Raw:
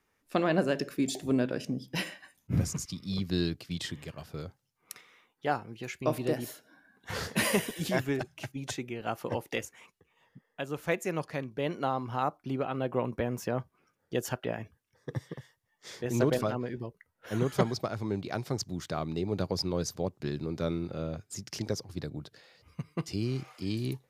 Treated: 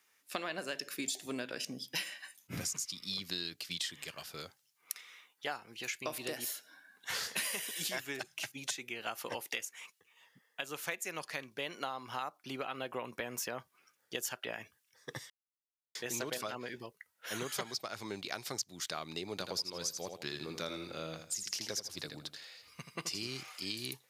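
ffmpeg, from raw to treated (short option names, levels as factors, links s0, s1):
-filter_complex "[0:a]asettb=1/sr,asplit=3[s0][s1][s2];[s0]atrim=end=19.334[s3];[s1]atrim=start=19.33:end=23.28,asetpts=PTS-STARTPTS,afade=t=in:d=0.004:c=qsin,afade=t=out:st=3.946:d=0.004:c=qsin,aecho=1:1:81|162|243:0.398|0.111|0.0312,atrim=end_sample=174195[s4];[s2]atrim=start=23.276[s5];[s3][s4]acrossfade=d=0.004:c1=hsin:c2=qsin[s6];[s6][s5]acrossfade=d=0.004:c1=qsin:c2=hsin,asplit=3[s7][s8][s9];[s7]atrim=end=15.3,asetpts=PTS-STARTPTS,afade=t=out:st=15.296:d=0.004:c=hsin[s10];[s8]atrim=start=15.3:end=15.95,asetpts=PTS-STARTPTS,volume=0[s11];[s9]atrim=start=15.95,asetpts=PTS-STARTPTS,afade=t=in:d=0.004:c=hsin[s12];[s10][s11][s12]concat=n=3:v=0:a=1,highpass=f=300:p=1,tiltshelf=f=1300:g=-8.5,acompressor=threshold=0.0158:ratio=6,volume=1.19"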